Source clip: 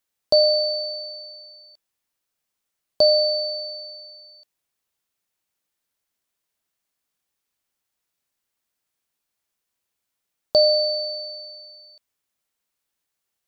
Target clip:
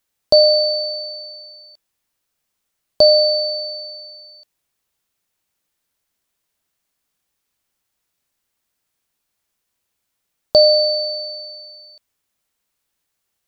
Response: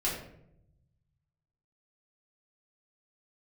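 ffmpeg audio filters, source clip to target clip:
-af "lowshelf=f=150:g=4.5,volume=5dB"

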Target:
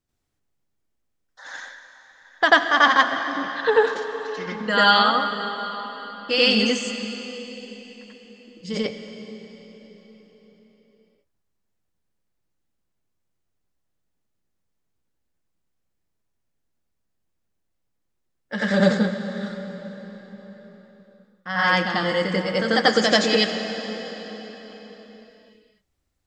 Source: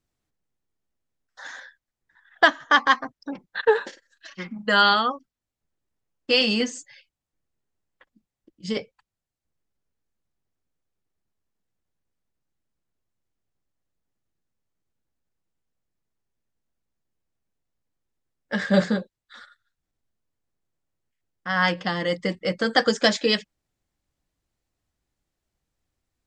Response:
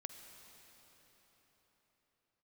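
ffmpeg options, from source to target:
-filter_complex "[0:a]asplit=2[a][b];[1:a]atrim=start_sample=2205,adelay=90[c];[b][c]afir=irnorm=-1:irlink=0,volume=9dB[d];[a][d]amix=inputs=2:normalize=0,volume=-3dB"

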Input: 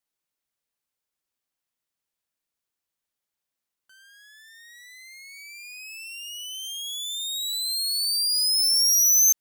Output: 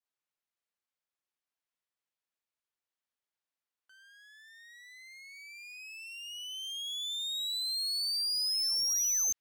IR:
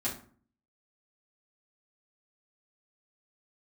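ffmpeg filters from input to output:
-filter_complex "[0:a]adynamicequalizer=threshold=0.0141:dfrequency=2700:dqfactor=0.77:tfrequency=2700:tqfactor=0.77:attack=5:release=100:ratio=0.375:range=2:mode=boostabove:tftype=bell,asplit=2[a][b];[b]highpass=f=720:p=1,volume=7dB,asoftclip=type=tanh:threshold=-11dB[c];[a][c]amix=inputs=2:normalize=0,lowpass=f=2.9k:p=1,volume=-6dB,volume=-7dB"

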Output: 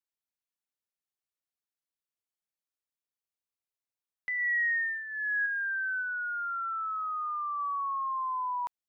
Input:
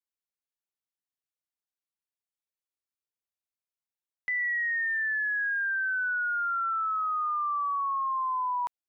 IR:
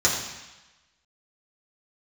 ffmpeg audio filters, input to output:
-filter_complex "[0:a]asettb=1/sr,asplit=3[a][b][c];[a]atrim=end=4.384[d];[b]atrim=start=4.38:end=5.46,asetpts=PTS-STARTPTS,afade=t=in:d=0.004:c=qsin,afade=t=out:st=1.076:d=0.004:c=qsin,aecho=1:1:3.7:0.64,atrim=end_sample=47628[e];[c]atrim=start=5.456[f];[d][e]acrossfade=d=0.004:c1=hsin:c2=qsin[g];[g][f]acrossfade=d=0.004:c1=qsin:c2=hsin,asplit=3[h][i][j];[h]afade=t=out:st=6.01:d=0.02[k];[i]highshelf=f=2.3k:g=-6.5,afade=t=in:st=6.01:d=0.02,afade=t=out:st=7.58:d=0.02[l];[j]afade=t=in:st=7.58:d=0.02[m];[k][l][m]amix=inputs=3:normalize=0,volume=-3dB"

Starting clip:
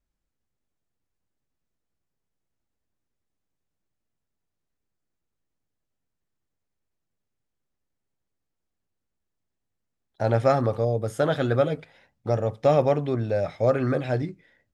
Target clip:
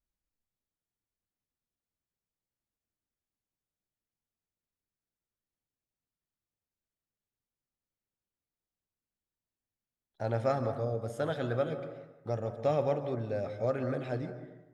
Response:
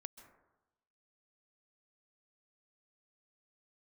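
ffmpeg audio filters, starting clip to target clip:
-filter_complex "[1:a]atrim=start_sample=2205,asetrate=42336,aresample=44100[a];[0:a][a]afir=irnorm=-1:irlink=0,volume=-4dB"

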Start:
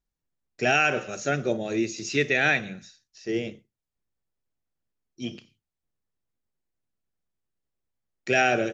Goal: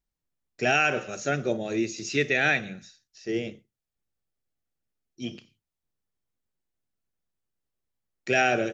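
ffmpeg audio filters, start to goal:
-filter_complex "[0:a]asettb=1/sr,asplit=3[a][b][c];[a]atrim=end=1.974[d];[b]atrim=start=1.97:end=5.29,asetpts=PTS-STARTPTS,afade=t=in:d=0.004:c=qsin,afade=t=out:st=3.316:d=0.004:c=qsin,asuperstop=centerf=1000:order=4:qfactor=7.9[e];[c]atrim=start=5.286[f];[d][e]acrossfade=d=0.004:c1=hsin:c2=qsin[g];[g][f]acrossfade=d=0.004:c1=qsin:c2=hsin,volume=-1dB"

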